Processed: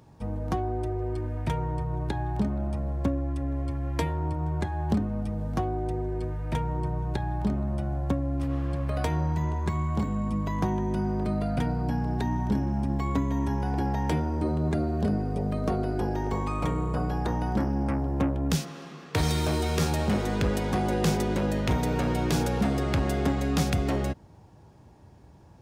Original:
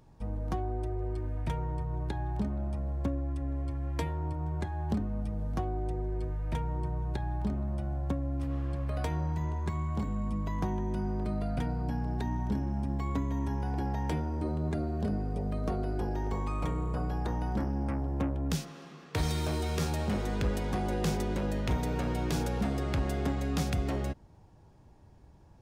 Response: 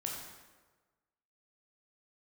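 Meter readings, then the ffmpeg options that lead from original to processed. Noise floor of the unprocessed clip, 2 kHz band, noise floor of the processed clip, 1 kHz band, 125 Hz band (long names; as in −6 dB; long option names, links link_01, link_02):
−55 dBFS, +6.0 dB, −52 dBFS, +6.0 dB, +4.5 dB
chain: -af "highpass=69,volume=6dB"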